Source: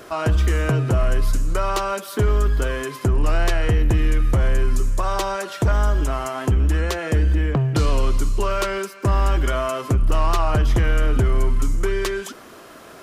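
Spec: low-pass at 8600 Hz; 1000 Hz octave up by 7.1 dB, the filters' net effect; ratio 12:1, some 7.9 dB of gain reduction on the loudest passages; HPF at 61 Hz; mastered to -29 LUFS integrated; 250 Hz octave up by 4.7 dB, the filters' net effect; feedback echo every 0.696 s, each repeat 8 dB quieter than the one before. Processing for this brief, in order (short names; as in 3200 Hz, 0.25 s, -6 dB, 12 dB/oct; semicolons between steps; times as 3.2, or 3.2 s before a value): HPF 61 Hz; LPF 8600 Hz; bell 250 Hz +6 dB; bell 1000 Hz +8.5 dB; compressor 12:1, threshold -21 dBFS; feedback echo 0.696 s, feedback 40%, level -8 dB; gain -3 dB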